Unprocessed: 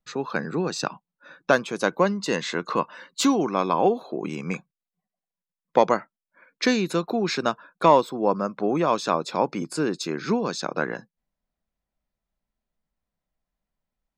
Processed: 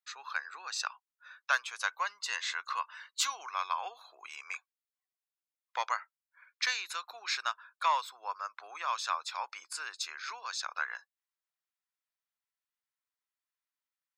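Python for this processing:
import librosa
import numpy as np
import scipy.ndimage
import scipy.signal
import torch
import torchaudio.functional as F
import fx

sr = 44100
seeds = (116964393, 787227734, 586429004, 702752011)

y = scipy.signal.sosfilt(scipy.signal.butter(4, 1100.0, 'highpass', fs=sr, output='sos'), x)
y = y * 10.0 ** (-4.0 / 20.0)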